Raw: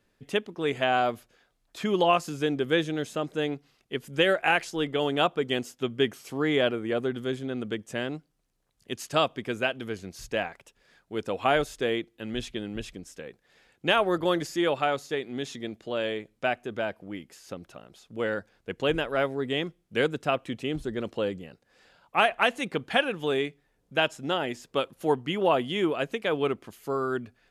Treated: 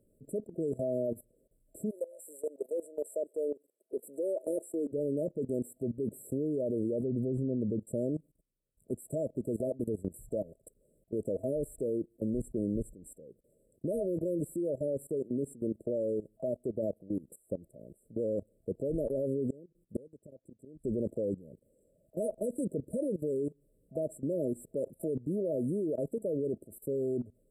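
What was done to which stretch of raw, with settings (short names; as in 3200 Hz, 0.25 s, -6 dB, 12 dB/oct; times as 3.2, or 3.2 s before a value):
1.89–4.91 HPF 760 Hz -> 250 Hz 24 dB/oct
7.03–7.79 tone controls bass +5 dB, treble -12 dB
19.46–20.84 flipped gate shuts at -24 dBFS, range -24 dB
whole clip: FFT band-reject 650–7500 Hz; level quantiser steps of 19 dB; gain +6.5 dB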